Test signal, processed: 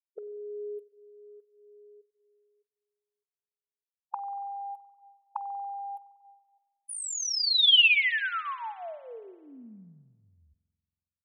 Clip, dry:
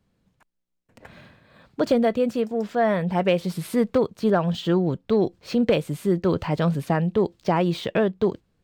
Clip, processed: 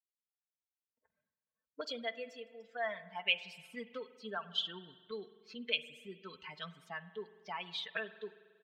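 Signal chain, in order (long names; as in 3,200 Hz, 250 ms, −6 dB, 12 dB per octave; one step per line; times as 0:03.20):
spectral dynamics exaggerated over time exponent 2
comb filter 4.5 ms, depth 65%
automatic gain control gain up to 7.5 dB
envelope filter 460–3,000 Hz, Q 2.9, up, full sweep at −20 dBFS
spring reverb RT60 1.6 s, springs 46 ms, chirp 55 ms, DRR 14.5 dB
level −3 dB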